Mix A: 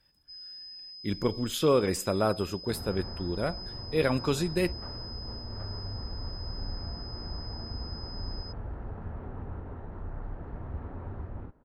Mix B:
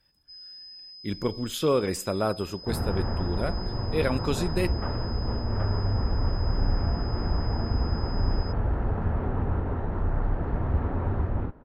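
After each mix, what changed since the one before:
second sound +12.0 dB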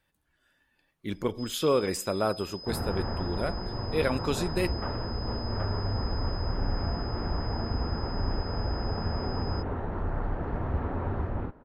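first sound: entry +1.10 s
master: add low-shelf EQ 200 Hz −5.5 dB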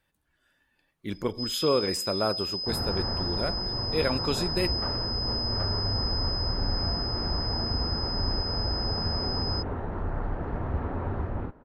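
first sound +12.0 dB

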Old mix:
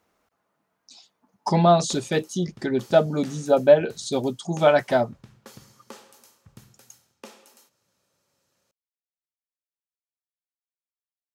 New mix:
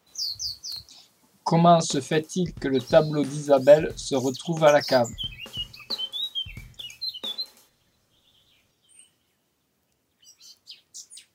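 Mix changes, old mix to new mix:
first sound: unmuted
second sound: remove high-pass filter 170 Hz 12 dB per octave

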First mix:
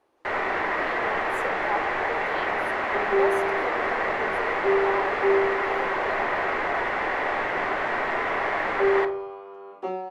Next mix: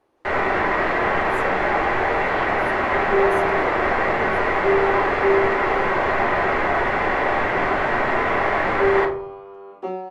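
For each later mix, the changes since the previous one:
first sound: send +9.0 dB
master: add low-shelf EQ 280 Hz +8 dB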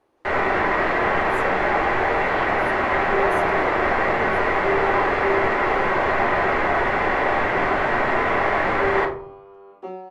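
second sound −5.5 dB

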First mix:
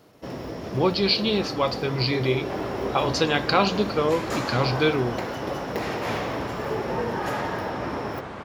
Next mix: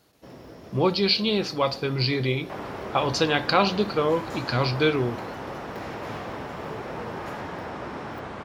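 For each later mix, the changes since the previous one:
first sound −10.5 dB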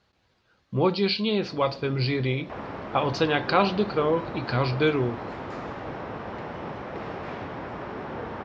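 first sound: entry +1.20 s
master: add high-frequency loss of the air 170 metres

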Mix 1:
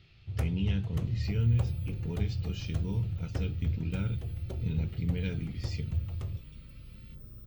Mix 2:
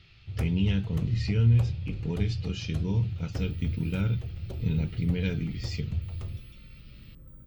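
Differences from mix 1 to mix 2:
speech +5.5 dB
second sound: entry +2.10 s

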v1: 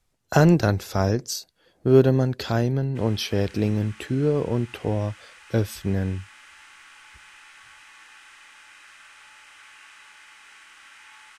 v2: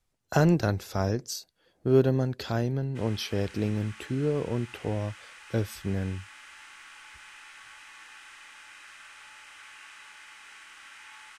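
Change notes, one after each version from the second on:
speech −5.5 dB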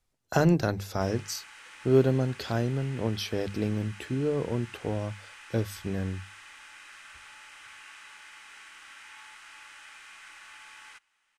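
speech: add mains-hum notches 50/100/150/200 Hz
background: entry −1.95 s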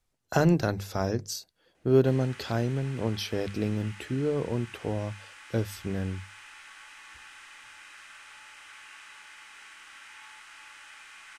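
background: entry +1.05 s

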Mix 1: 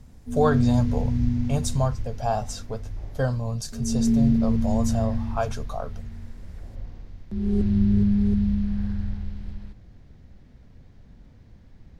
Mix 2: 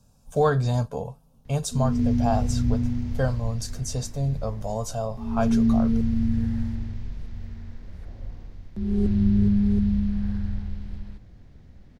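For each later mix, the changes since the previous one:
background: entry +1.45 s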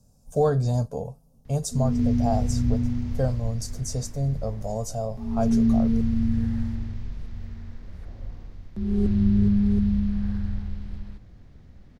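speech: add flat-topped bell 1,900 Hz −10.5 dB 2.3 octaves
master: add parametric band 1,200 Hz +3 dB 0.26 octaves

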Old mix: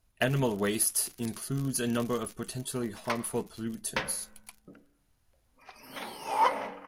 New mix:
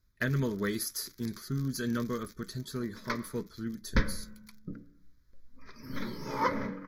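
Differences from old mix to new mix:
background: remove high-pass filter 910 Hz 6 dB per octave
master: add phaser with its sweep stopped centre 2,800 Hz, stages 6

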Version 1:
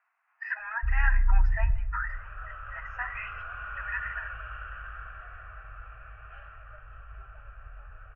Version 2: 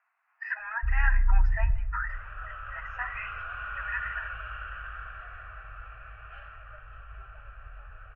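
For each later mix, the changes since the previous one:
second sound: remove high-frequency loss of the air 290 metres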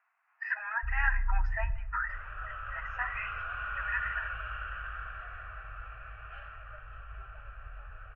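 first sound −7.5 dB

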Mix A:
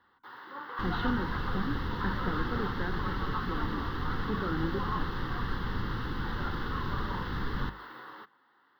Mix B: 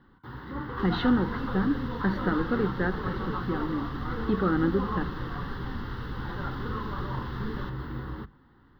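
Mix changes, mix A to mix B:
speech +9.0 dB
first sound: remove high-pass filter 710 Hz 12 dB per octave
second sound −4.0 dB

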